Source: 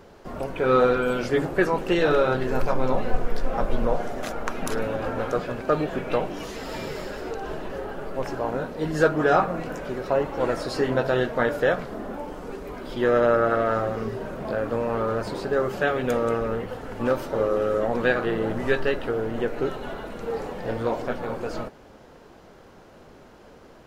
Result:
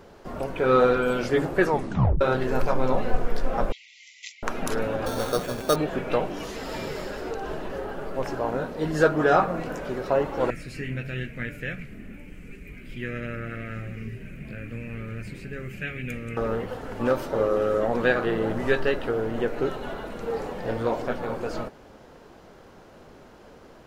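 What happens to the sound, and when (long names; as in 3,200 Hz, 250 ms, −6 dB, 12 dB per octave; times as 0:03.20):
0:01.69: tape stop 0.52 s
0:03.72–0:04.43: linear-phase brick-wall band-pass 1,900–7,600 Hz
0:05.06–0:05.76: sample-rate reduction 5,000 Hz
0:10.50–0:16.37: drawn EQ curve 160 Hz 0 dB, 950 Hz −29 dB, 1,600 Hz −9 dB, 2,400 Hz +7 dB, 3,400 Hz −12 dB, 5,200 Hz −13 dB, 7,600 Hz −6 dB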